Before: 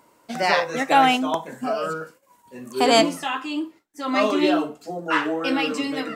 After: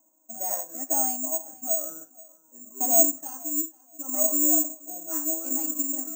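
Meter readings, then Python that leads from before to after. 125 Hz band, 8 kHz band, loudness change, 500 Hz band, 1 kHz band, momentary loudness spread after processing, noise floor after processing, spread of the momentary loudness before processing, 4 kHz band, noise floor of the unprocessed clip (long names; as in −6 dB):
below −20 dB, +14.5 dB, −2.0 dB, −11.0 dB, −15.5 dB, 16 LU, −62 dBFS, 16 LU, below −25 dB, −60 dBFS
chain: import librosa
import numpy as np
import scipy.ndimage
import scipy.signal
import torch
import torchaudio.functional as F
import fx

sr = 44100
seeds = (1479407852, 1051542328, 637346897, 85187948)

y = fx.rider(x, sr, range_db=5, speed_s=2.0)
y = fx.double_bandpass(y, sr, hz=440.0, octaves=1.1)
y = fx.echo_feedback(y, sr, ms=478, feedback_pct=22, wet_db=-22.5)
y = (np.kron(scipy.signal.resample_poly(y, 1, 6), np.eye(6)[0]) * 6)[:len(y)]
y = y * 10.0 ** (-9.0 / 20.0)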